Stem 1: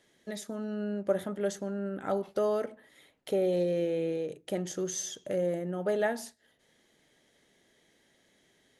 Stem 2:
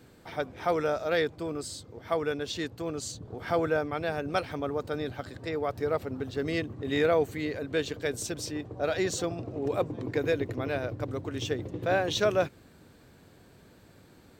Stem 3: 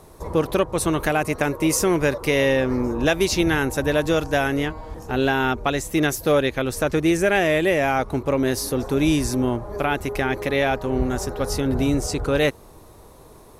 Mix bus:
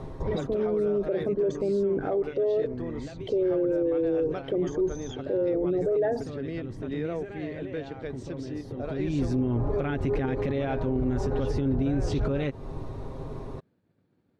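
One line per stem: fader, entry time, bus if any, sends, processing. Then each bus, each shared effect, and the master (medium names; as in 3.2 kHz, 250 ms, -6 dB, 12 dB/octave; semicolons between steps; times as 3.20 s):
+2.5 dB, 0.00 s, no send, resonances exaggerated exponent 2; de-esser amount 100%; comb 2.6 ms, depth 38%
-5.0 dB, 0.00 s, no send, high-pass 120 Hz 12 dB/octave; expander -45 dBFS; compression 2:1, threshold -38 dBFS, peak gain reduction 10 dB
+1.0 dB, 0.00 s, no send, comb 7.5 ms, depth 48%; compression 2:1, threshold -28 dBFS, peak gain reduction 8.5 dB; peak limiter -24.5 dBFS, peak gain reduction 11 dB; auto duck -15 dB, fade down 0.70 s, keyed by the first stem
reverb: none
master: low-pass 3.7 kHz 12 dB/octave; bass shelf 460 Hz +12 dB; peak limiter -19 dBFS, peak gain reduction 9.5 dB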